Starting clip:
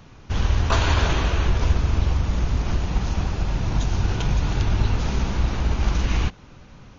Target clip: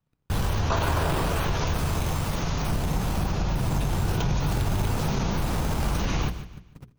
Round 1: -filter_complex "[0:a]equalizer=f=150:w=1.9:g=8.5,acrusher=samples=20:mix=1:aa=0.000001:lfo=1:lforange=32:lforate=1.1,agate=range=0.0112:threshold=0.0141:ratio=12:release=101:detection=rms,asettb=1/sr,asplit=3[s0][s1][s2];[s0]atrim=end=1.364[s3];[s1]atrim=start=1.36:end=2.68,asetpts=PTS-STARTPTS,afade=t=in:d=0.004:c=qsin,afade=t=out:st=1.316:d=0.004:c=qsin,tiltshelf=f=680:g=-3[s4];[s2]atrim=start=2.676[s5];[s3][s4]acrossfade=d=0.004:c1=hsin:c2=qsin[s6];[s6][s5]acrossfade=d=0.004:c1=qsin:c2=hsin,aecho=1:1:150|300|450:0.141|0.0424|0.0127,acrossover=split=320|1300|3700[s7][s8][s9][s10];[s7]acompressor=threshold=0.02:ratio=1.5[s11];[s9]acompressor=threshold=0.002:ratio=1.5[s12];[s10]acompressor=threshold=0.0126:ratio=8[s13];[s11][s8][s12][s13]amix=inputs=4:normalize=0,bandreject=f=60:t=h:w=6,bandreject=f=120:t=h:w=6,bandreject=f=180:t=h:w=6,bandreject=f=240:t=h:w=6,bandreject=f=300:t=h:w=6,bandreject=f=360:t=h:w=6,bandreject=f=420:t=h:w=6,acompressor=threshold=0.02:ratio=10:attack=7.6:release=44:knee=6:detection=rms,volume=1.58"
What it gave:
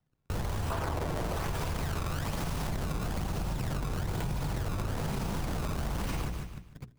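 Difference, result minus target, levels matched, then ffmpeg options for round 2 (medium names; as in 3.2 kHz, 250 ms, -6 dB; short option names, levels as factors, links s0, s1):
compression: peak gain reduction +9 dB; decimation with a swept rate: distortion +8 dB
-filter_complex "[0:a]equalizer=f=150:w=1.9:g=8.5,acrusher=samples=4:mix=1:aa=0.000001:lfo=1:lforange=6.4:lforate=1.1,agate=range=0.0112:threshold=0.0141:ratio=12:release=101:detection=rms,asettb=1/sr,asplit=3[s0][s1][s2];[s0]atrim=end=1.364[s3];[s1]atrim=start=1.36:end=2.68,asetpts=PTS-STARTPTS,afade=t=in:d=0.004:c=qsin,afade=t=out:st=1.316:d=0.004:c=qsin,tiltshelf=f=680:g=-3[s4];[s2]atrim=start=2.676[s5];[s3][s4]acrossfade=d=0.004:c1=hsin:c2=qsin[s6];[s6][s5]acrossfade=d=0.004:c1=qsin:c2=hsin,aecho=1:1:150|300|450:0.141|0.0424|0.0127,acrossover=split=320|1300|3700[s7][s8][s9][s10];[s7]acompressor=threshold=0.02:ratio=1.5[s11];[s9]acompressor=threshold=0.002:ratio=1.5[s12];[s10]acompressor=threshold=0.0126:ratio=8[s13];[s11][s8][s12][s13]amix=inputs=4:normalize=0,bandreject=f=60:t=h:w=6,bandreject=f=120:t=h:w=6,bandreject=f=180:t=h:w=6,bandreject=f=240:t=h:w=6,bandreject=f=300:t=h:w=6,bandreject=f=360:t=h:w=6,bandreject=f=420:t=h:w=6,acompressor=threshold=0.0631:ratio=10:attack=7.6:release=44:knee=6:detection=rms,volume=1.58"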